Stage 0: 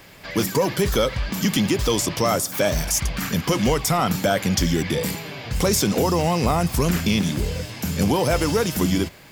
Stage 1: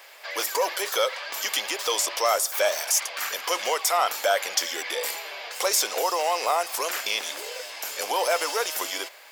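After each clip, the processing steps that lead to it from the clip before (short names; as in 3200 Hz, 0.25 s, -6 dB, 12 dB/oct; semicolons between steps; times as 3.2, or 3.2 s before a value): inverse Chebyshev high-pass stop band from 160 Hz, stop band 60 dB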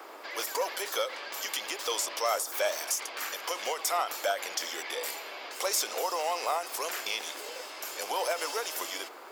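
band noise 310–1400 Hz -42 dBFS; ending taper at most 160 dB/s; gain -6 dB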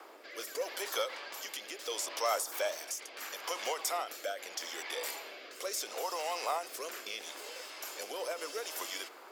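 rotary speaker horn 0.75 Hz; gain -2.5 dB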